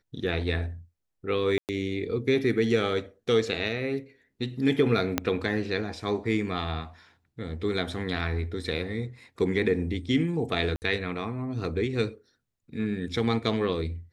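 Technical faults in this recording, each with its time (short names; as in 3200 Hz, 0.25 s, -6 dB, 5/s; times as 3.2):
1.58–1.69 gap 0.108 s
5.18 pop -8 dBFS
10.76–10.82 gap 59 ms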